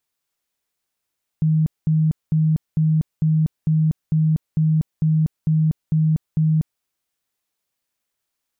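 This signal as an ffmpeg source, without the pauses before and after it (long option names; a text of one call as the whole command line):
ffmpeg -f lavfi -i "aevalsrc='0.2*sin(2*PI*157*mod(t,0.45))*lt(mod(t,0.45),38/157)':duration=5.4:sample_rate=44100" out.wav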